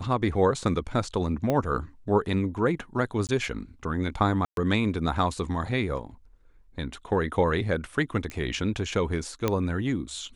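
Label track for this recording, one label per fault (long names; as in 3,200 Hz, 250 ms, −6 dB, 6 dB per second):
1.500000	1.500000	click −13 dBFS
3.270000	3.290000	drop-out 18 ms
4.450000	4.570000	drop-out 122 ms
8.300000	8.300000	click −21 dBFS
9.480000	9.480000	click −11 dBFS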